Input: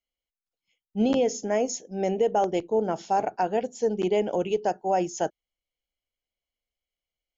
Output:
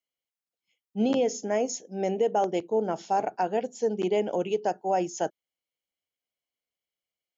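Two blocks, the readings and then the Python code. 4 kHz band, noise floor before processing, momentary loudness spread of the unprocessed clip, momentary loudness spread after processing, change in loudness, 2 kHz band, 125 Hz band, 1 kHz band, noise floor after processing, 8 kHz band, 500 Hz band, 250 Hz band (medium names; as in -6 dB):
-1.5 dB, under -85 dBFS, 6 LU, 6 LU, -1.5 dB, -1.5 dB, -2.5 dB, -1.5 dB, under -85 dBFS, no reading, -1.5 dB, -2.0 dB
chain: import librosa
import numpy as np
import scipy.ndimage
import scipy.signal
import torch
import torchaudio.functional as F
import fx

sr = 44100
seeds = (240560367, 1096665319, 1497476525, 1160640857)

y = scipy.signal.sosfilt(scipy.signal.butter(2, 130.0, 'highpass', fs=sr, output='sos'), x)
y = y * 10.0 ** (-1.5 / 20.0)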